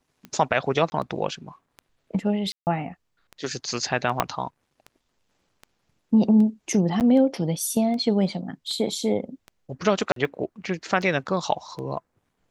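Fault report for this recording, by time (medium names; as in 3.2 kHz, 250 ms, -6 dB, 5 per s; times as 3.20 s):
tick 78 rpm -24 dBFS
0.90–0.92 s: dropout 20 ms
2.52–2.67 s: dropout 149 ms
4.20 s: pop -5 dBFS
7.00–7.01 s: dropout 8.5 ms
10.12–10.16 s: dropout 43 ms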